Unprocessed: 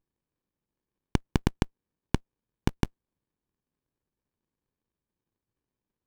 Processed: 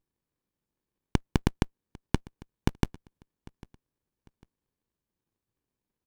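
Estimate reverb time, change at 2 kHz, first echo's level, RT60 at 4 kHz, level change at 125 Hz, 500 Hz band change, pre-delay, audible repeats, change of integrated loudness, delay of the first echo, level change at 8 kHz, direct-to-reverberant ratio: no reverb audible, 0.0 dB, −23.0 dB, no reverb audible, 0.0 dB, 0.0 dB, no reverb audible, 2, 0.0 dB, 799 ms, 0.0 dB, no reverb audible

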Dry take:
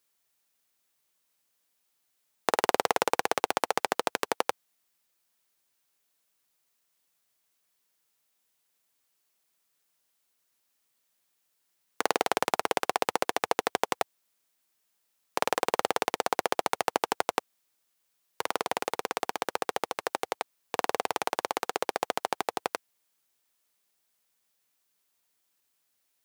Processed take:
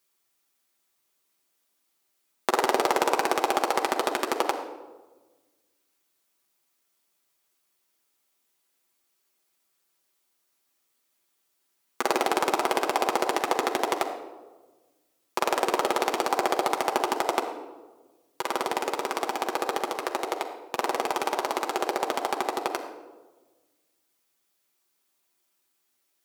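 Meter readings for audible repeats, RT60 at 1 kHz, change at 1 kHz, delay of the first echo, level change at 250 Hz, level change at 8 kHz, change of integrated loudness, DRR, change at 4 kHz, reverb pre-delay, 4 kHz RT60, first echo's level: no echo audible, 1.2 s, +3.5 dB, no echo audible, +6.5 dB, +1.5 dB, +3.0 dB, 0.5 dB, +2.0 dB, 5 ms, 0.75 s, no echo audible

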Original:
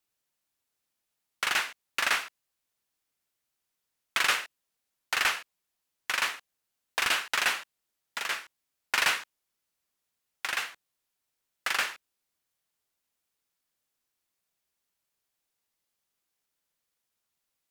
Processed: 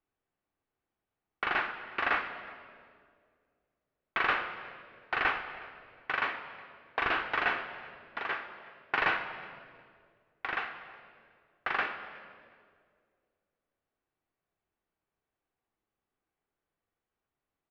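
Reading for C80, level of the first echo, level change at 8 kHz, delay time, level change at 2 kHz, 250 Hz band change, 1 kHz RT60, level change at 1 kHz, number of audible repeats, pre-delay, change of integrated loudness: 10.0 dB, −22.5 dB, below −30 dB, 366 ms, −2.0 dB, +6.0 dB, 1.8 s, +1.5 dB, 1, 3 ms, −4.0 dB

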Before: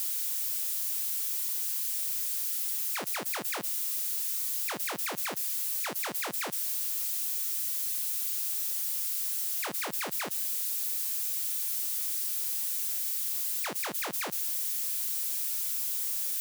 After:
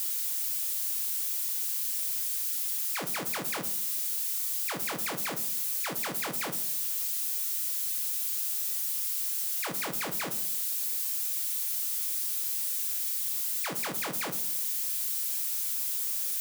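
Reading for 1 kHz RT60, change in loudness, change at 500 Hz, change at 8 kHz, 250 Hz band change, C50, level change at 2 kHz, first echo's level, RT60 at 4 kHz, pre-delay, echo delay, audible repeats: 0.55 s, +0.5 dB, +1.0 dB, +0.5 dB, +3.5 dB, 14.0 dB, +0.5 dB, no echo audible, 0.35 s, 6 ms, no echo audible, no echo audible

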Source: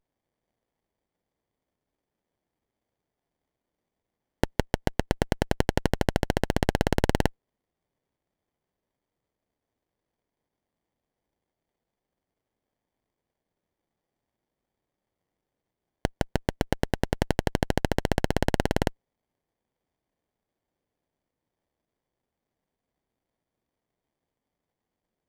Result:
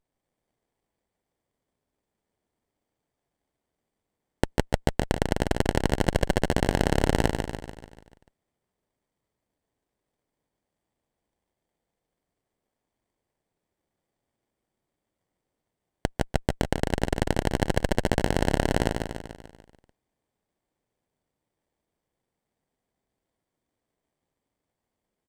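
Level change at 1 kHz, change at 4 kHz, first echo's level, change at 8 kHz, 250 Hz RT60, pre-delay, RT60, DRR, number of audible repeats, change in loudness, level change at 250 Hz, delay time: +1.5 dB, +1.0 dB, −5.5 dB, +3.0 dB, no reverb audible, no reverb audible, no reverb audible, no reverb audible, 6, +1.0 dB, +1.0 dB, 146 ms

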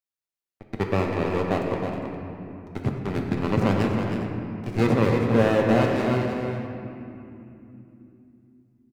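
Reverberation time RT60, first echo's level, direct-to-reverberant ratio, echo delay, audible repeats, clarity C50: 2.9 s, −7.5 dB, −0.5 dB, 318 ms, 2, 1.0 dB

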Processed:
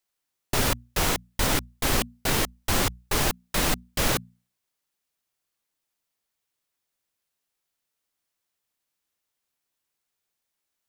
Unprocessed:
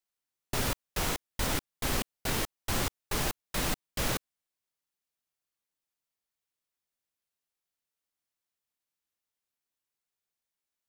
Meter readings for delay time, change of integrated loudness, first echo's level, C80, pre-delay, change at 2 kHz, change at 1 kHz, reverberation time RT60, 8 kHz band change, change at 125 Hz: no echo audible, +7.0 dB, no echo audible, no reverb audible, no reverb audible, +7.0 dB, +7.0 dB, no reverb audible, +7.0 dB, +6.0 dB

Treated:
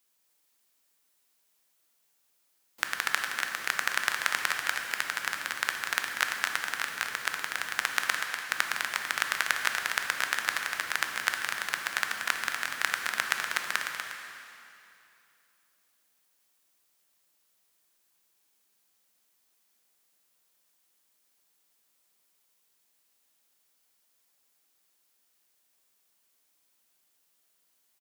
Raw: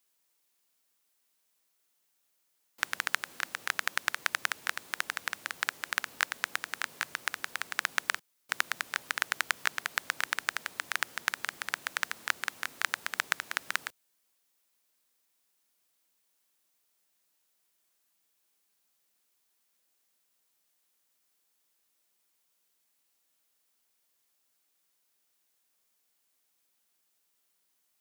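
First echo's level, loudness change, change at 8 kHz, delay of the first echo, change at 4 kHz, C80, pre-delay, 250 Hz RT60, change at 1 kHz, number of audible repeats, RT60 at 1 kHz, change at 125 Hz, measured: −7.5 dB, +3.5 dB, +3.5 dB, 243 ms, +3.5 dB, 3.0 dB, 7 ms, 2.7 s, +3.5 dB, 1, 2.7 s, can't be measured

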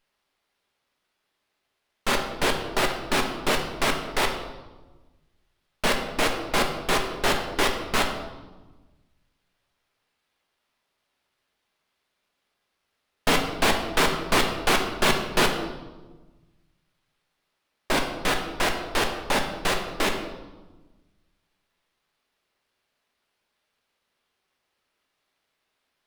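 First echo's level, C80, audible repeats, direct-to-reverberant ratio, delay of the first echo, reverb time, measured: no echo audible, 8.5 dB, no echo audible, 3.0 dB, no echo audible, 1.2 s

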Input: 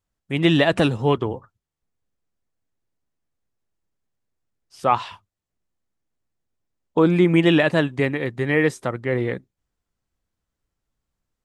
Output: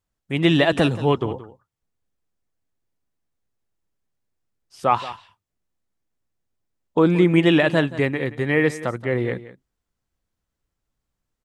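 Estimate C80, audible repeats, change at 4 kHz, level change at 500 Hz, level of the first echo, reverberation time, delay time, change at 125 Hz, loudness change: no reverb audible, 1, 0.0 dB, 0.0 dB, −16.0 dB, no reverb audible, 176 ms, 0.0 dB, 0.0 dB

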